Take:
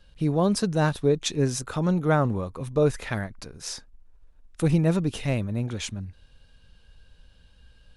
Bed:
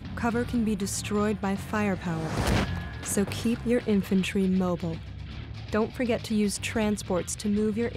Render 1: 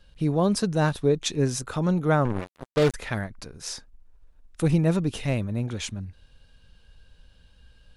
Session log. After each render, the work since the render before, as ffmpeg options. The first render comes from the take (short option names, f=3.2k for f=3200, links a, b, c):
-filter_complex "[0:a]asettb=1/sr,asplit=3[a][b][c];[a]atrim=end=2.254[d];[b]atrim=start=2.25:end=2.94,asetpts=PTS-STARTPTS,afade=t=in:d=0.004:c=qsin,afade=t=out:st=0.686:d=0.004:c=qsin,acrusher=bits=3:mix=0:aa=0.5[e];[c]atrim=start=2.936[f];[d][e]acrossfade=d=0.004:c1=hsin:c2=qsin[g];[g][f]acrossfade=d=0.004:c1=qsin:c2=hsin"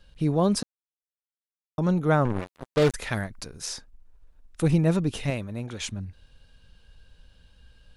-filter_complex "[0:a]asettb=1/sr,asplit=3[a][b][c];[a]atrim=end=2.944[d];[b]atrim=start=2.94:end=3.66,asetpts=PTS-STARTPTS,afade=t=in:d=0.004:c=qsin,afade=t=out:st=0.716:d=0.004:c=qsin,highshelf=f=4k:g=6.5[e];[c]atrim=start=3.656[f];[d][e]acrossfade=d=0.004:c1=hsin:c2=qsin[g];[g][f]acrossfade=d=0.004:c1=qsin:c2=hsin,asettb=1/sr,asplit=3[h][i][j];[h]atrim=end=5.304[k];[i]atrim=start=5.3:end=5.81,asetpts=PTS-STARTPTS,afade=t=in:d=0.004:c=qsin,afade=t=out:st=0.506:d=0.004:c=qsin,lowshelf=f=330:g=-7.5[l];[j]atrim=start=5.806[m];[k][l]acrossfade=d=0.004:c1=hsin:c2=qsin[n];[n][m]acrossfade=d=0.004:c1=qsin:c2=hsin,asplit=3[o][p][q];[o]atrim=end=0.63,asetpts=PTS-STARTPTS,afade=t=out:st=0.626:d=0.004:c=hsin[r];[p]atrim=start=0.63:end=1.78,asetpts=PTS-STARTPTS,volume=0[s];[q]atrim=start=1.78,asetpts=PTS-STARTPTS,afade=t=in:d=0.004:c=hsin[t];[r][s][t]concat=n=3:v=0:a=1"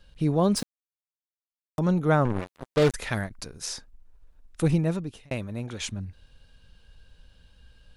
-filter_complex "[0:a]asettb=1/sr,asplit=3[a][b][c];[a]atrim=end=0.564[d];[b]atrim=start=0.56:end=1.79,asetpts=PTS-STARTPTS,afade=t=in:d=0.004:c=qsin,afade=t=out:st=1.226:d=0.004:c=qsin,acrusher=bits=7:dc=4:mix=0:aa=0.000001[e];[c]atrim=start=1.786[f];[d][e]acrossfade=d=0.004:c1=hsin:c2=qsin[g];[g][f]acrossfade=d=0.004:c1=qsin:c2=hsin,asettb=1/sr,asplit=3[h][i][j];[h]atrim=end=3.294[k];[i]atrim=start=3.29:end=3.72,asetpts=PTS-STARTPTS,afade=t=in:d=0.004:c=qsin,afade=t=out:st=0.426:d=0.004:c=qsin,agate=range=-33dB:threshold=-43dB:ratio=3:release=100:detection=peak[l];[j]atrim=start=3.716[m];[k][l]acrossfade=d=0.004:c1=hsin:c2=qsin[n];[n][m]acrossfade=d=0.004:c1=qsin:c2=hsin,asplit=2[o][p];[o]atrim=end=5.31,asetpts=PTS-STARTPTS,afade=t=out:st=4.63:d=0.68[q];[p]atrim=start=5.31,asetpts=PTS-STARTPTS,afade=t=in:d=0.004:c=hsin[r];[q][r]concat=n=2:v=0:a=1"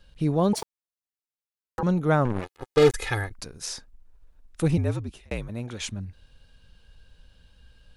-filter_complex "[0:a]asettb=1/sr,asplit=3[a][b][c];[a]atrim=end=0.534[d];[b]atrim=start=0.53:end=1.83,asetpts=PTS-STARTPTS,afade=t=in:d=0.004:c=qsin,afade=t=out:st=1.296:d=0.004:c=qsin,aeval=exprs='val(0)*sin(2*PI*660*n/s)':c=same[e];[c]atrim=start=1.826[f];[d][e]acrossfade=d=0.004:c1=hsin:c2=qsin[g];[g][f]acrossfade=d=0.004:c1=qsin:c2=hsin,asettb=1/sr,asplit=3[h][i][j];[h]atrim=end=2.434[k];[i]atrim=start=2.43:end=3.34,asetpts=PTS-STARTPTS,afade=t=in:d=0.004:c=qsin,afade=t=out:st=0.906:d=0.004:c=qsin,aecho=1:1:2.4:0.9,atrim=end_sample=40131[l];[j]atrim=start=3.336[m];[k][l]acrossfade=d=0.004:c1=hsin:c2=qsin[n];[n][m]acrossfade=d=0.004:c1=qsin:c2=hsin,asettb=1/sr,asplit=3[o][p][q];[o]atrim=end=4.774[r];[p]atrim=start=4.77:end=5.49,asetpts=PTS-STARTPTS,afade=t=in:d=0.004:c=qsin,afade=t=out:st=0.716:d=0.004:c=qsin,afreqshift=-59[s];[q]atrim=start=5.486[t];[r][s]acrossfade=d=0.004:c1=hsin:c2=qsin[u];[u][t]acrossfade=d=0.004:c1=qsin:c2=hsin"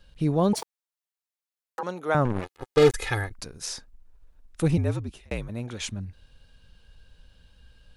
-filter_complex "[0:a]asettb=1/sr,asplit=3[a][b][c];[a]atrim=end=0.624[d];[b]atrim=start=0.62:end=2.15,asetpts=PTS-STARTPTS,afade=t=in:d=0.004:c=qsin,afade=t=out:st=1.526:d=0.004:c=qsin,highpass=490[e];[c]atrim=start=2.146[f];[d][e]acrossfade=d=0.004:c1=hsin:c2=qsin[g];[g][f]acrossfade=d=0.004:c1=qsin:c2=hsin"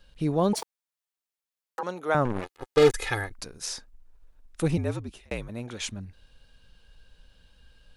-af "equalizer=f=88:w=0.6:g=-5.5"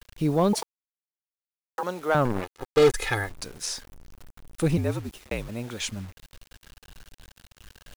-filter_complex "[0:a]asplit=2[a][b];[b]aeval=exprs='0.112*(abs(mod(val(0)/0.112+3,4)-2)-1)':c=same,volume=-10dB[c];[a][c]amix=inputs=2:normalize=0,acrusher=bits=7:mix=0:aa=0.000001"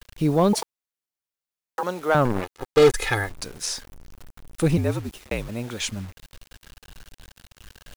-af "volume=3dB"